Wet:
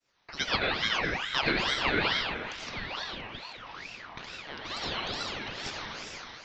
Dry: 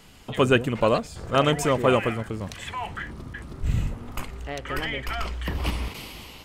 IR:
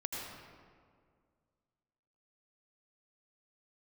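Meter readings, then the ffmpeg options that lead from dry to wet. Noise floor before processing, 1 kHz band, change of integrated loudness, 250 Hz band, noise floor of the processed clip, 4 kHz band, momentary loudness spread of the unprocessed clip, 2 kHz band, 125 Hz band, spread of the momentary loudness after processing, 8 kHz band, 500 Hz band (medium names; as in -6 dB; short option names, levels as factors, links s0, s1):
-44 dBFS, -6.0 dB, -5.0 dB, -11.0 dB, -48 dBFS, +3.0 dB, 15 LU, +0.5 dB, -15.0 dB, 15 LU, -6.0 dB, -13.0 dB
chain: -filter_complex "[0:a]agate=range=0.0224:threshold=0.01:ratio=3:detection=peak,lowshelf=f=420:g=-12,acrossover=split=430|2000[s0][s1][s2];[s0]acompressor=threshold=0.00794:ratio=6[s3];[s3][s1][s2]amix=inputs=3:normalize=0[s4];[1:a]atrim=start_sample=2205[s5];[s4][s5]afir=irnorm=-1:irlink=0,aresample=11025,aresample=44100,aeval=exprs='val(0)*sin(2*PI*1800*n/s+1800*0.5/2.3*sin(2*PI*2.3*n/s))':c=same"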